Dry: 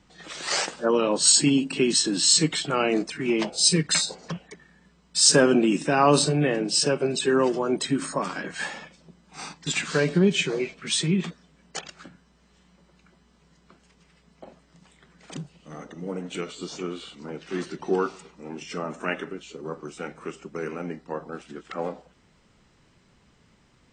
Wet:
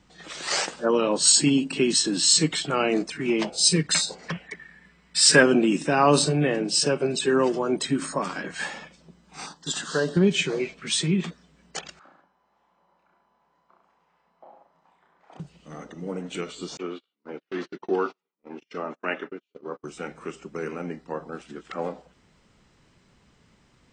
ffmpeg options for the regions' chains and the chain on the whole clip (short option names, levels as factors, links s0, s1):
-filter_complex "[0:a]asettb=1/sr,asplit=3[s0][s1][s2];[s0]atrim=end=4.194[s3];[s1]atrim=start=4.19:end=5.43,asetpts=PTS-STARTPTS,afade=t=in:d=0.004:c=qsin,afade=t=out:st=1.236:d=0.004:c=qsin,equalizer=f=2000:w=1.7:g=12.5,bandreject=f=6400:w=9.9[s4];[s2]atrim=start=5.426[s5];[s3][s4]acrossfade=d=0.004:c1=hsin:c2=qsin[s6];[s6][s5]acrossfade=d=0.004:c1=qsin:c2=hsin,asettb=1/sr,asplit=3[s7][s8][s9];[s7]atrim=end=9.464[s10];[s8]atrim=start=9.46:end=10.17,asetpts=PTS-STARTPTS,afade=t=in:d=0.004:c=qsin,afade=t=out:st=0.706:d=0.004:c=qsin,asuperstop=centerf=2300:order=4:qfactor=1.8,lowshelf=f=160:g=-10.5[s11];[s9]atrim=start=10.166[s12];[s10][s11]acrossfade=d=0.004:c1=hsin:c2=qsin[s13];[s13][s12]acrossfade=d=0.004:c1=qsin:c2=hsin,asettb=1/sr,asplit=3[s14][s15][s16];[s14]atrim=end=11.994[s17];[s15]atrim=start=11.99:end=15.4,asetpts=PTS-STARTPTS,afade=t=in:d=0.004:c=qsin,afade=t=out:st=3.406:d=0.004:c=qsin,bandpass=f=870:t=q:w=2.6,aecho=1:1:30|63|99.3|139.2|183.2:0.794|0.631|0.501|0.398|0.316,atrim=end_sample=150381[s18];[s16]atrim=start=15.396[s19];[s17][s18]acrossfade=d=0.004:c1=hsin:c2=qsin[s20];[s20][s19]acrossfade=d=0.004:c1=qsin:c2=hsin,asettb=1/sr,asplit=3[s21][s22][s23];[s21]atrim=end=16.774[s24];[s22]atrim=start=16.77:end=19.84,asetpts=PTS-STARTPTS,afade=t=in:d=0.004:c=qsin,afade=t=out:st=3.066:d=0.004:c=qsin,lowpass=7900,acrossover=split=200 5400:gain=0.0631 1 0.0891[s25][s26][s27];[s25][s26][s27]amix=inputs=3:normalize=0,agate=range=0.0141:threshold=0.0112:ratio=16:release=100:detection=peak[s28];[s23]atrim=start=19.836[s29];[s24][s28]acrossfade=d=0.004:c1=hsin:c2=qsin[s30];[s30][s29]acrossfade=d=0.004:c1=qsin:c2=hsin"